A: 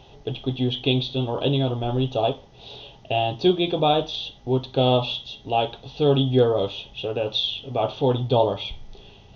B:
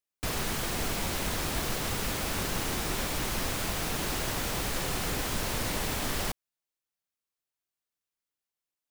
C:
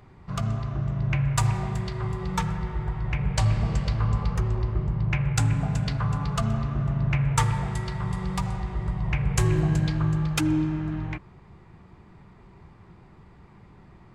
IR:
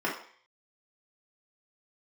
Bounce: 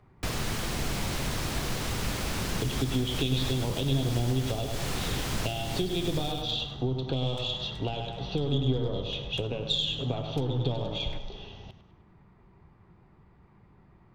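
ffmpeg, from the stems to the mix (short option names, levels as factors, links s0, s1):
-filter_complex "[0:a]aeval=exprs='0.562*(cos(1*acos(clip(val(0)/0.562,-1,1)))-cos(1*PI/2))+0.0282*(cos(6*acos(clip(val(0)/0.562,-1,1)))-cos(6*PI/2))':c=same,adelay=2350,volume=1.41,asplit=2[s0][s1];[s1]volume=0.188[s2];[1:a]volume=1.33,asplit=2[s3][s4];[s4]volume=0.0944[s5];[2:a]lowpass=f=2800:p=1,acompressor=threshold=0.0355:ratio=6,asoftclip=type=hard:threshold=0.0299,volume=0.447[s6];[s0][s3]amix=inputs=2:normalize=0,highshelf=f=8700:g=-11,acompressor=threshold=0.0708:ratio=5,volume=1[s7];[s2][s5]amix=inputs=2:normalize=0,aecho=0:1:101|202|303|404|505|606:1|0.44|0.194|0.0852|0.0375|0.0165[s8];[s6][s7][s8]amix=inputs=3:normalize=0,acrossover=split=280|3000[s9][s10][s11];[s10]acompressor=threshold=0.0178:ratio=6[s12];[s9][s12][s11]amix=inputs=3:normalize=0"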